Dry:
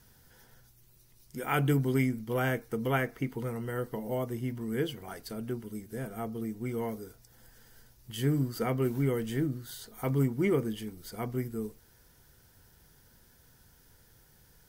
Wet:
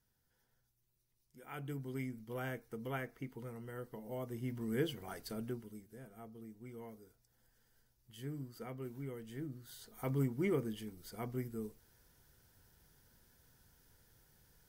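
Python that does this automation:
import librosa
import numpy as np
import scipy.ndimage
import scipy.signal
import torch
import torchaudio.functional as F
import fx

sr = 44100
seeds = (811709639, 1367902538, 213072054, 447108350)

y = fx.gain(x, sr, db=fx.line((1.36, -20.0), (2.22, -12.0), (4.04, -12.0), (4.64, -4.0), (5.39, -4.0), (5.99, -16.0), (9.23, -16.0), (9.96, -7.0)))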